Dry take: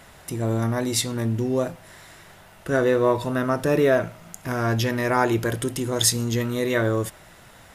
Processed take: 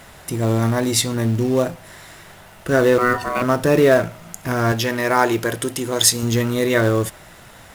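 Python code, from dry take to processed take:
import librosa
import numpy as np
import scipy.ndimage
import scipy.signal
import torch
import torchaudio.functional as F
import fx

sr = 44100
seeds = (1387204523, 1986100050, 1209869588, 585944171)

p1 = fx.ring_mod(x, sr, carrier_hz=860.0, at=(2.98, 3.42))
p2 = fx.low_shelf(p1, sr, hz=190.0, db=-10.5, at=(4.72, 6.23))
p3 = fx.quant_companded(p2, sr, bits=4)
p4 = p2 + (p3 * 10.0 ** (-6.0 / 20.0))
y = p4 * 10.0 ** (1.5 / 20.0)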